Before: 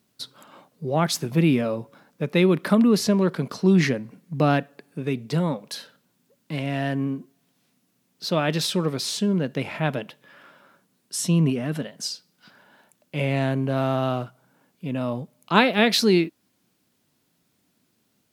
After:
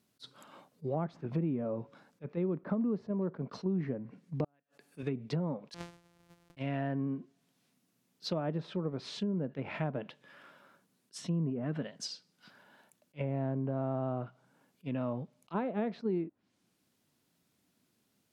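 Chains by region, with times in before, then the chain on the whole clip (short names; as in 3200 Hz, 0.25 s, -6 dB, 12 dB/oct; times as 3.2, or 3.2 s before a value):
4.44–5.03 tilt +2 dB/oct + flipped gate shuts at -16 dBFS, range -41 dB
5.74–6.57 sample sorter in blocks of 256 samples + negative-ratio compressor -41 dBFS, ratio -0.5
whole clip: treble ducked by the level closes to 890 Hz, closed at -20 dBFS; compressor 4:1, threshold -24 dBFS; attack slew limiter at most 500 dB/s; gain -6 dB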